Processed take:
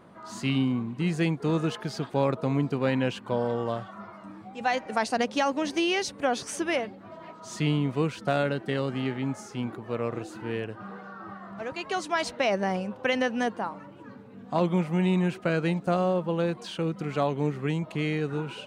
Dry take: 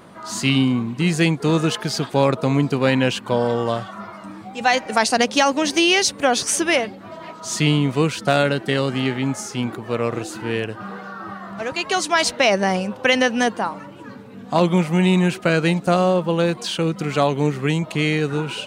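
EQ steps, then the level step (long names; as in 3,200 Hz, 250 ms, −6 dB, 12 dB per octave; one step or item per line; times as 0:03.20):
high-shelf EQ 2,900 Hz −9.5 dB
−7.5 dB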